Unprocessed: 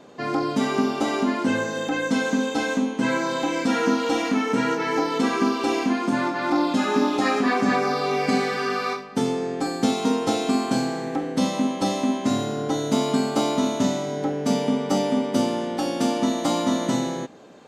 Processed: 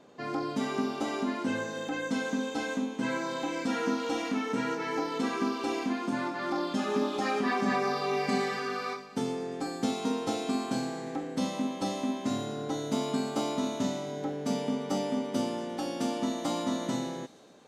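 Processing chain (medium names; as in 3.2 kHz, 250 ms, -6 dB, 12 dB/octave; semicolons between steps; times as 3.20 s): 6.39–8.59 s: comb 5.1 ms, depth 50%; feedback echo behind a high-pass 116 ms, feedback 72%, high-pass 3.1 kHz, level -15 dB; trim -8.5 dB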